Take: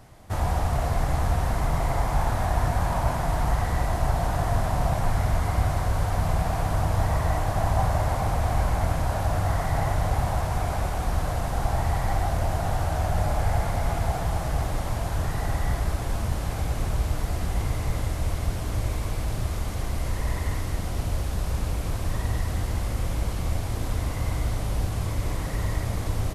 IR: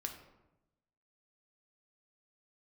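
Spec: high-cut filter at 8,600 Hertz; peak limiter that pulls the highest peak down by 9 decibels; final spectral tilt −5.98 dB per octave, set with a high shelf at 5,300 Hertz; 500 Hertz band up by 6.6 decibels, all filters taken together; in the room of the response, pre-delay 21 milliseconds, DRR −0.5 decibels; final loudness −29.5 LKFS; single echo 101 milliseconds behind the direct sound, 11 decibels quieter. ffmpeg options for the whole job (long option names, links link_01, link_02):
-filter_complex "[0:a]lowpass=8600,equalizer=frequency=500:width_type=o:gain=9,highshelf=frequency=5300:gain=7,alimiter=limit=-16.5dB:level=0:latency=1,aecho=1:1:101:0.282,asplit=2[link_01][link_02];[1:a]atrim=start_sample=2205,adelay=21[link_03];[link_02][link_03]afir=irnorm=-1:irlink=0,volume=2dB[link_04];[link_01][link_04]amix=inputs=2:normalize=0,volume=-6.5dB"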